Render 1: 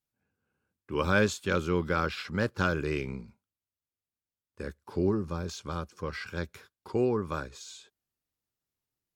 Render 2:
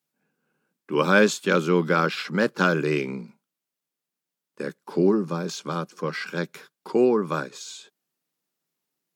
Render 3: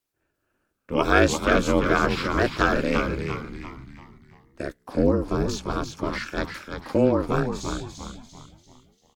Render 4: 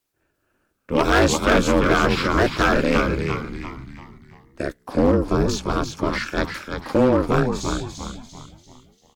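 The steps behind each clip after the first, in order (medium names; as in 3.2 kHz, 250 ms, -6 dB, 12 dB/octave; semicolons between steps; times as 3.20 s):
elliptic high-pass 150 Hz, stop band 40 dB; trim +8 dB
ring modulator 130 Hz; on a send: frequency-shifting echo 343 ms, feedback 42%, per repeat -100 Hz, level -6 dB; on the sum: trim +2.5 dB
hard clipper -15.5 dBFS, distortion -11 dB; trim +5 dB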